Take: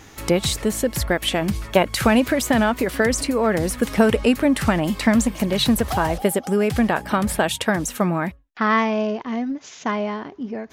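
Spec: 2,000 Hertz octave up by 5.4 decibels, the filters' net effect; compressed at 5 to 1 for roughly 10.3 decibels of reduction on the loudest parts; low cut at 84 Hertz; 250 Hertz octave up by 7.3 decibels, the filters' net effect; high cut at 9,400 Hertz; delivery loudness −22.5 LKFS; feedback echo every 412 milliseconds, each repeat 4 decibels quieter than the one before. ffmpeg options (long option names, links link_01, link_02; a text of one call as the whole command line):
ffmpeg -i in.wav -af "highpass=84,lowpass=9400,equalizer=frequency=250:width_type=o:gain=8.5,equalizer=frequency=2000:width_type=o:gain=6.5,acompressor=threshold=-17dB:ratio=5,aecho=1:1:412|824|1236|1648|2060|2472|2884|3296|3708:0.631|0.398|0.25|0.158|0.0994|0.0626|0.0394|0.0249|0.0157,volume=-2.5dB" out.wav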